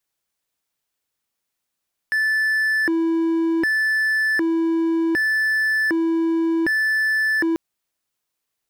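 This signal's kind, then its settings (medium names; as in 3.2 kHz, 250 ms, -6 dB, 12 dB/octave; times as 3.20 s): siren hi-lo 329–1750 Hz 0.66 per s triangle -15 dBFS 5.44 s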